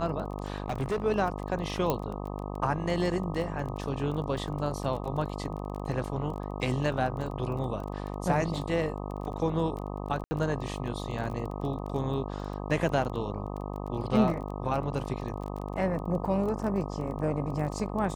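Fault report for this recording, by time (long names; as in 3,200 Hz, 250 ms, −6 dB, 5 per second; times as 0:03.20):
mains buzz 50 Hz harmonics 25 −36 dBFS
surface crackle 20 per second −35 dBFS
0:00.64–0:01.06: clipping −25.5 dBFS
0:01.90: click −13 dBFS
0:10.24–0:10.31: drop-out 70 ms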